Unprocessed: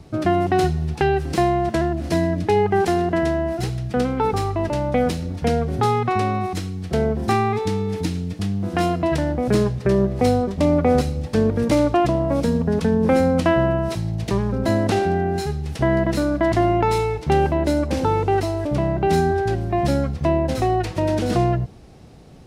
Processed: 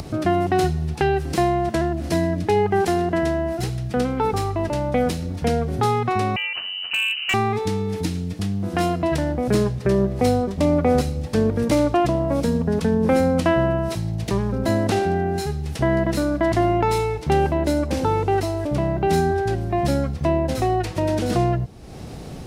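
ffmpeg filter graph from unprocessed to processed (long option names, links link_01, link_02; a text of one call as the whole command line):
ffmpeg -i in.wav -filter_complex "[0:a]asettb=1/sr,asplit=3[link_01][link_02][link_03];[link_01]atrim=end=6.364[link_04];[link_02]atrim=start=6.36:end=7.34,asetpts=PTS-STARTPTS,afade=type=in:duration=0.004:curve=qsin,afade=type=out:start_time=0.976:duration=0.004:curve=qsin,highpass=frequency=190:poles=1,lowpass=frequency=2600:width_type=q:width=0.5098,lowpass=frequency=2600:width_type=q:width=0.6013,lowpass=frequency=2600:width_type=q:width=0.9,lowpass=frequency=2600:width_type=q:width=2.563,afreqshift=-3100,asoftclip=type=hard:threshold=-15.5dB[link_05];[link_03]atrim=start=7.336[link_06];[link_04][link_05]acrossfade=duration=0.004:curve1=hsin:curve2=qsin[link_07];[link_07][link_06]acrossfade=duration=0.004:curve1=qsin:curve2=hsin,highshelf=frequency=8300:gain=5.5,acompressor=mode=upward:threshold=-22dB:ratio=2.5,volume=-1dB" out.wav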